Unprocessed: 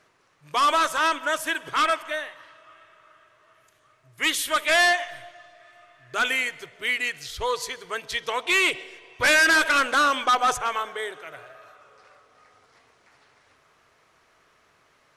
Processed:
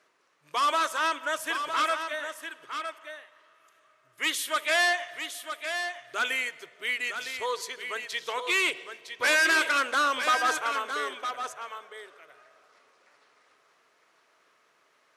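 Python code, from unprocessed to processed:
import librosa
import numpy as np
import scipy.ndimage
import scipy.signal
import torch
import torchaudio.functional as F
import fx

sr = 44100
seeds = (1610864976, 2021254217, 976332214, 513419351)

y = scipy.signal.sosfilt(scipy.signal.butter(2, 280.0, 'highpass', fs=sr, output='sos'), x)
y = fx.peak_eq(y, sr, hz=770.0, db=-3.0, octaves=0.21)
y = y + 10.0 ** (-8.0 / 20.0) * np.pad(y, (int(959 * sr / 1000.0), 0))[:len(y)]
y = F.gain(torch.from_numpy(y), -4.5).numpy()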